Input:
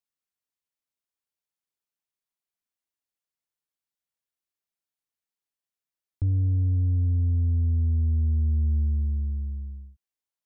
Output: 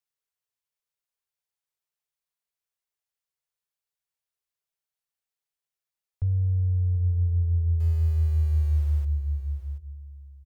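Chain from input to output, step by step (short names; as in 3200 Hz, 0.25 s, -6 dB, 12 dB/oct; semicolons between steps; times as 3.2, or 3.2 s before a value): 7.8–9.05 G.711 law mismatch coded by mu; elliptic band-stop 160–400 Hz; echo 0.731 s -13 dB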